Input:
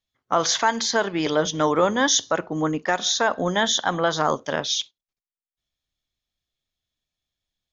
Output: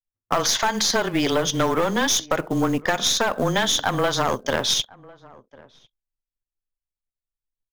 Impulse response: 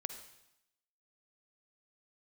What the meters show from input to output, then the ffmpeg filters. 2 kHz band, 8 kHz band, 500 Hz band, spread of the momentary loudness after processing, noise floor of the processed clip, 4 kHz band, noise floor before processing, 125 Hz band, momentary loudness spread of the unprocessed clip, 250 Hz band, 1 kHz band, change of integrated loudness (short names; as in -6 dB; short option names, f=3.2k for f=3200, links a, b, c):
0.0 dB, n/a, -0.5 dB, 3 LU, under -85 dBFS, +2.0 dB, under -85 dBFS, +3.5 dB, 6 LU, +1.5 dB, -1.0 dB, +0.5 dB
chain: -filter_complex "[0:a]anlmdn=0.0398,highshelf=f=2k:g=2,afreqshift=-18,aeval=exprs='(tanh(5.62*val(0)+0.45)-tanh(0.45))/5.62':c=same,acrusher=bits=6:mode=log:mix=0:aa=0.000001,acompressor=threshold=-24dB:ratio=6,asplit=2[a][b];[b]adelay=1050,volume=-23dB,highshelf=f=4k:g=-23.6[c];[a][c]amix=inputs=2:normalize=0,volume=7dB"